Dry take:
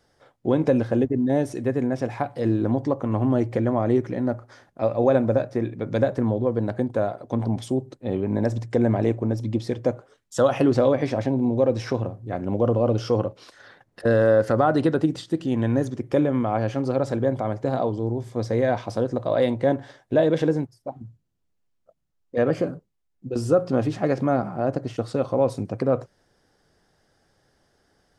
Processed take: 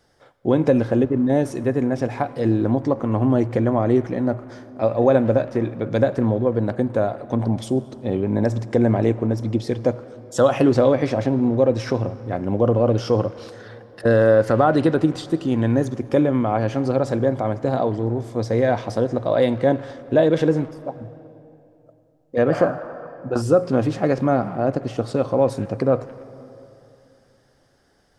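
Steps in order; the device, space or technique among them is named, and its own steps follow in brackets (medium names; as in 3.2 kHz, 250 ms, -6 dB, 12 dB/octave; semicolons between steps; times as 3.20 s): saturated reverb return (on a send at -14 dB: reverberation RT60 2.7 s, pre-delay 71 ms + saturation -22.5 dBFS, distortion -9 dB); 22.52–23.42 s: on the sum: high-order bell 1 kHz +14 dB; trim +3 dB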